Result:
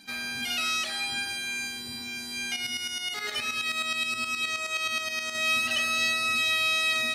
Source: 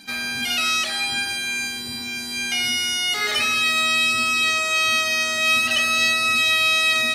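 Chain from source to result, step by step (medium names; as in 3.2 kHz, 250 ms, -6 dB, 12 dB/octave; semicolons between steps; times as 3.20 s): 2.56–5.35 s: tremolo saw up 9.5 Hz, depth 65%; trim -7 dB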